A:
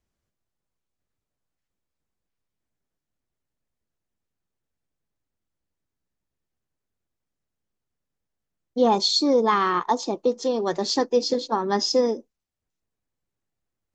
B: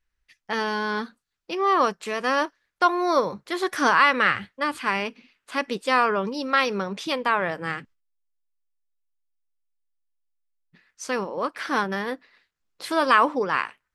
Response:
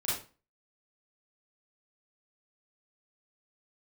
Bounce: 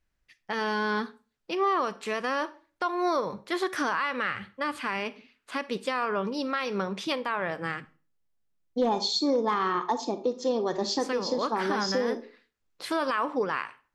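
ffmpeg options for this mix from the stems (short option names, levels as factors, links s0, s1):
-filter_complex "[0:a]volume=3.76,asoftclip=hard,volume=0.266,volume=0.668,asplit=2[s0][s1];[s1]volume=0.168[s2];[1:a]volume=0.841,asplit=2[s3][s4];[s4]volume=0.0794[s5];[2:a]atrim=start_sample=2205[s6];[s2][s5]amix=inputs=2:normalize=0[s7];[s7][s6]afir=irnorm=-1:irlink=0[s8];[s0][s3][s8]amix=inputs=3:normalize=0,highshelf=f=6100:g=-4.5,alimiter=limit=0.133:level=0:latency=1:release=203"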